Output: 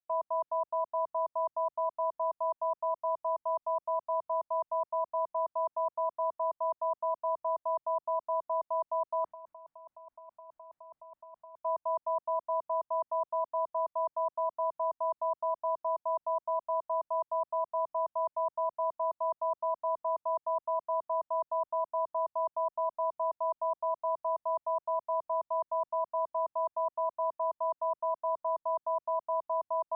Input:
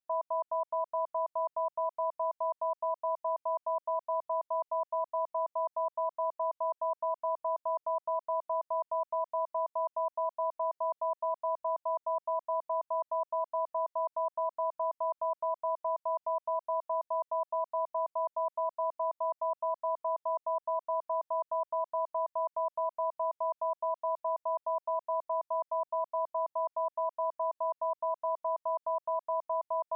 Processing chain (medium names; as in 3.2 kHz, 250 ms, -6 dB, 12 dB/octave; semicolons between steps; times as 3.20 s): dynamic bell 610 Hz, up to -3 dB, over -44 dBFS, Q 1.2; low-pass 1 kHz 12 dB/octave; 9.24–11.57 s: compressor with a negative ratio -49 dBFS, ratio -1; peaking EQ 420 Hz -14.5 dB 0.32 oct; three bands expanded up and down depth 40%; trim +5.5 dB